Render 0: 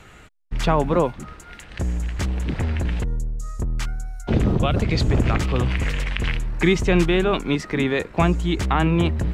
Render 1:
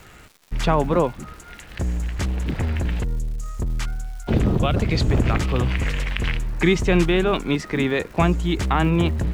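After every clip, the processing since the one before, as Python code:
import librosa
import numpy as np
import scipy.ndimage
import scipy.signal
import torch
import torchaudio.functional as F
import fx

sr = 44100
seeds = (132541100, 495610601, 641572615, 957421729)

y = fx.dmg_crackle(x, sr, seeds[0], per_s=370.0, level_db=-39.0)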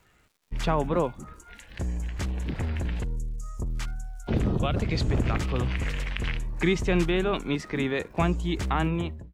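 y = fx.fade_out_tail(x, sr, length_s=0.53)
y = fx.noise_reduce_blind(y, sr, reduce_db=11)
y = F.gain(torch.from_numpy(y), -6.0).numpy()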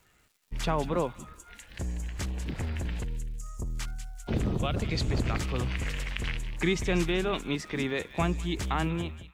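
y = fx.high_shelf(x, sr, hz=4000.0, db=7.0)
y = fx.echo_wet_highpass(y, sr, ms=191, feedback_pct=36, hz=2000.0, wet_db=-10.5)
y = F.gain(torch.from_numpy(y), -3.5).numpy()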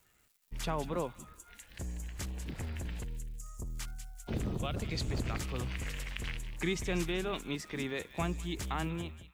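y = fx.high_shelf(x, sr, hz=8700.0, db=10.5)
y = F.gain(torch.from_numpy(y), -6.5).numpy()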